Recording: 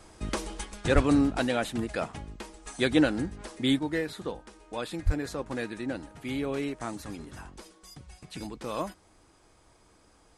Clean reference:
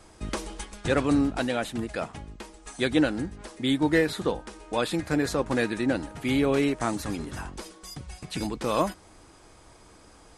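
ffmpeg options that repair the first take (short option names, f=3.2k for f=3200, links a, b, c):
-filter_complex "[0:a]asplit=3[a][b][c];[a]afade=t=out:st=0.94:d=0.02[d];[b]highpass=f=140:w=0.5412,highpass=f=140:w=1.3066,afade=t=in:st=0.94:d=0.02,afade=t=out:st=1.06:d=0.02[e];[c]afade=t=in:st=1.06:d=0.02[f];[d][e][f]amix=inputs=3:normalize=0,asplit=3[g][h][i];[g]afade=t=out:st=5.05:d=0.02[j];[h]highpass=f=140:w=0.5412,highpass=f=140:w=1.3066,afade=t=in:st=5.05:d=0.02,afade=t=out:st=5.17:d=0.02[k];[i]afade=t=in:st=5.17:d=0.02[l];[j][k][l]amix=inputs=3:normalize=0,asetnsamples=n=441:p=0,asendcmd='3.79 volume volume 8dB',volume=0dB"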